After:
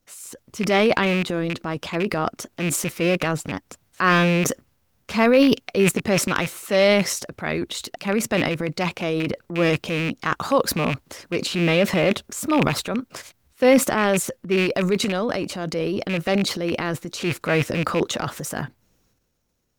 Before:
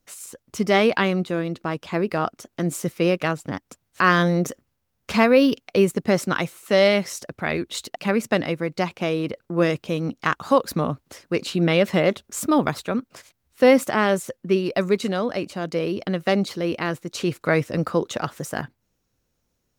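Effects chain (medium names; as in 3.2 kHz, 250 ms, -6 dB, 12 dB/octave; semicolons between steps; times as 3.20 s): rattle on loud lows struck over -26 dBFS, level -16 dBFS; transient shaper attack -3 dB, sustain +9 dB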